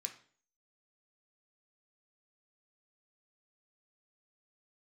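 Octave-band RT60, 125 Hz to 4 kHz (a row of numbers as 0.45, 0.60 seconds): 0.50, 0.55, 0.50, 0.45, 0.45, 0.45 seconds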